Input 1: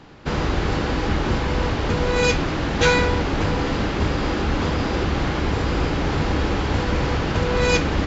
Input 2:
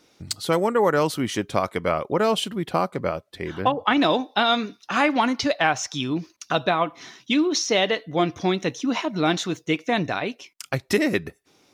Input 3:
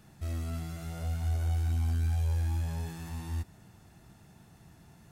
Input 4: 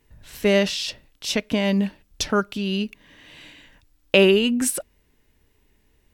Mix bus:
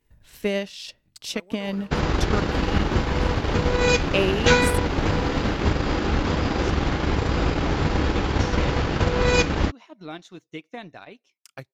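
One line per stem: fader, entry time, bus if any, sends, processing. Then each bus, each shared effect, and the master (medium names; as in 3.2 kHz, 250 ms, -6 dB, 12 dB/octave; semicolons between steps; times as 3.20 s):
-1.0 dB, 1.65 s, no send, none
-16.5 dB, 0.85 s, no send, auto duck -9 dB, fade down 1.75 s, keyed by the fourth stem
-11.5 dB, 2.20 s, no send, none
-8.0 dB, 0.00 s, no send, none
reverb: none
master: transient shaper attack +4 dB, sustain -8 dB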